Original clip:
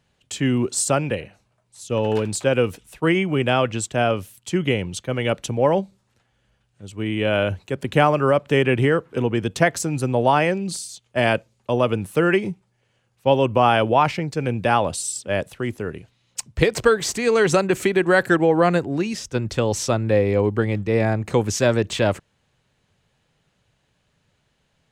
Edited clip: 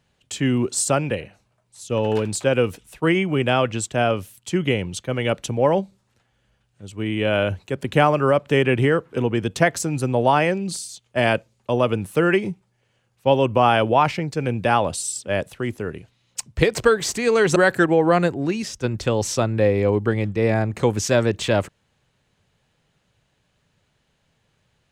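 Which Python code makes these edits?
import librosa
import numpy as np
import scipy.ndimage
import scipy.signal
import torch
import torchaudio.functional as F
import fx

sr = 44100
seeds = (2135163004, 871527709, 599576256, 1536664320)

y = fx.edit(x, sr, fx.cut(start_s=17.56, length_s=0.51), tone=tone)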